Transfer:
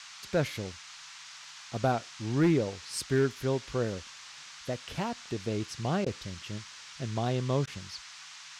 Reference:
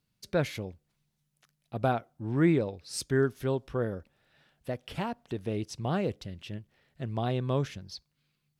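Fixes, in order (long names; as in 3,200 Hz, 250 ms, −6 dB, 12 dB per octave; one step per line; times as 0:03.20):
clipped peaks rebuilt −18.5 dBFS
repair the gap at 0:06.05/0:07.66, 12 ms
noise reduction from a noise print 29 dB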